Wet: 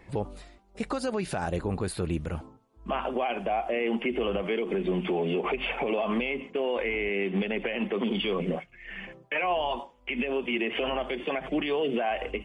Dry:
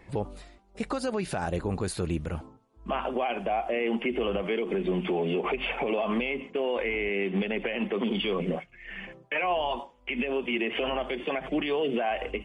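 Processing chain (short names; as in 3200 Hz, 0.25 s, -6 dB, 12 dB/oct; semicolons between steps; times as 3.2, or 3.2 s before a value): 1.65–2.13 bell 6200 Hz -10 dB 0.45 oct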